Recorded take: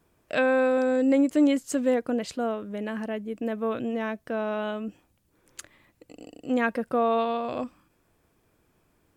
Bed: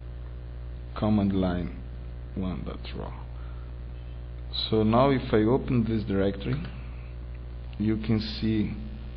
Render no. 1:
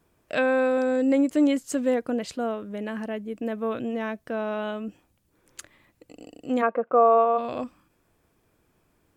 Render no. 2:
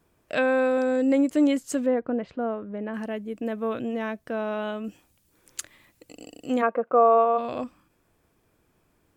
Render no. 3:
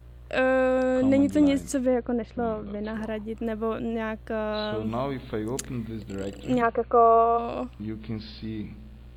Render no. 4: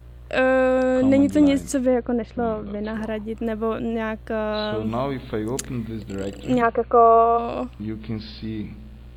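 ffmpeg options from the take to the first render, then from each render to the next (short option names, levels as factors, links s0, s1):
-filter_complex "[0:a]asplit=3[s0][s1][s2];[s0]afade=t=out:st=6.61:d=0.02[s3];[s1]highpass=300,equalizer=f=480:t=q:w=4:g=6,equalizer=f=690:t=q:w=4:g=6,equalizer=f=1200:t=q:w=4:g=9,equalizer=f=1800:t=q:w=4:g=-8,lowpass=f=2200:w=0.5412,lowpass=f=2200:w=1.3066,afade=t=in:st=6.61:d=0.02,afade=t=out:st=7.37:d=0.02[s4];[s2]afade=t=in:st=7.37:d=0.02[s5];[s3][s4][s5]amix=inputs=3:normalize=0"
-filter_complex "[0:a]asettb=1/sr,asplit=3[s0][s1][s2];[s0]atrim=end=1.864[s3];[s1]atrim=start=1.86:end=2.94,asetpts=PTS-STARTPTS,afade=t=in:d=0.004:c=qsin,afade=t=out:st=1.076:d=0.004:c=qsin,lowpass=1700[s4];[s2]atrim=start=2.936[s5];[s3][s4]acrossfade=d=0.004:c1=hsin:c2=qsin[s6];[s6][s5]acrossfade=d=0.004:c1=qsin:c2=hsin,asettb=1/sr,asplit=3[s7][s8][s9];[s7]atrim=end=4.844[s10];[s8]atrim=start=4.84:end=6.56,asetpts=PTS-STARTPTS,afade=t=in:d=0.004:c=qsin,afade=t=out:st=1.716:d=0.004:c=qsin,highshelf=f=2600:g=9[s11];[s9]atrim=start=6.556[s12];[s10][s11]acrossfade=d=0.004:c1=hsin:c2=qsin[s13];[s13][s12]acrossfade=d=0.004:c1=qsin:c2=hsin"
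-filter_complex "[1:a]volume=0.398[s0];[0:a][s0]amix=inputs=2:normalize=0"
-af "volume=1.58"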